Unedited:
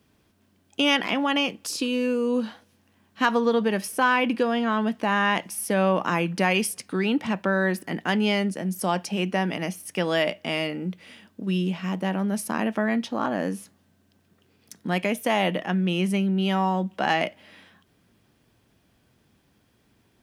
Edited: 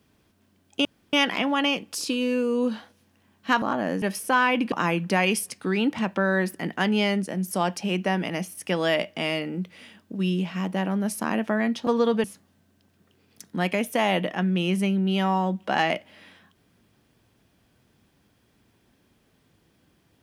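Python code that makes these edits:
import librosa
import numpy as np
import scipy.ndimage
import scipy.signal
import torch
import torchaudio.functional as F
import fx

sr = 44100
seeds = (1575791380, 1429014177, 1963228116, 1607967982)

y = fx.edit(x, sr, fx.insert_room_tone(at_s=0.85, length_s=0.28),
    fx.swap(start_s=3.34, length_s=0.37, other_s=13.15, other_length_s=0.4),
    fx.cut(start_s=4.41, length_s=1.59), tone=tone)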